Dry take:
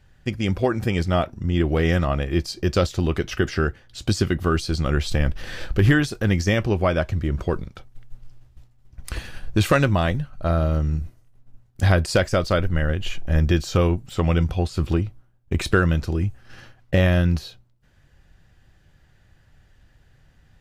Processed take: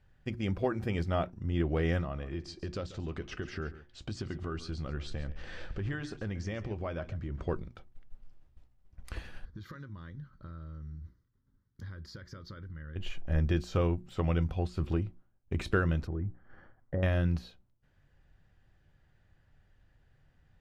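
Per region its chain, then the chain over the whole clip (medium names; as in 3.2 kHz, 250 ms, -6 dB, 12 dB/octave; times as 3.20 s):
2.01–7.48 s: low-pass 8.3 kHz 24 dB/octave + compression 3:1, threshold -24 dBFS + delay 139 ms -15 dB
9.45–12.96 s: high-pass 45 Hz + compression 16:1, threshold -29 dBFS + static phaser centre 2.6 kHz, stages 6
16.07–17.03 s: low-pass that closes with the level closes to 890 Hz, closed at -14.5 dBFS + Savitzky-Golay filter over 41 samples + compression 1.5:1, threshold -24 dBFS
whole clip: treble shelf 4.3 kHz -11 dB; hum notches 60/120/180/240/300/360 Hz; trim -9 dB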